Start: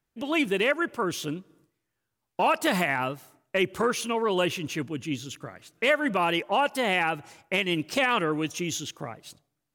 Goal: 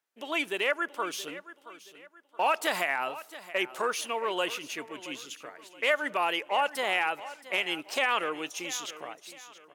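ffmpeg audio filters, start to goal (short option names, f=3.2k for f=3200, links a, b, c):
-af "highpass=510,aecho=1:1:674|1348|2022:0.158|0.0571|0.0205,volume=-2dB"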